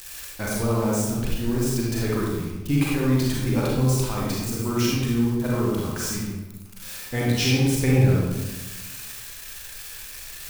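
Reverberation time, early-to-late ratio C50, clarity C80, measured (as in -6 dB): 1.2 s, -2.0 dB, 1.5 dB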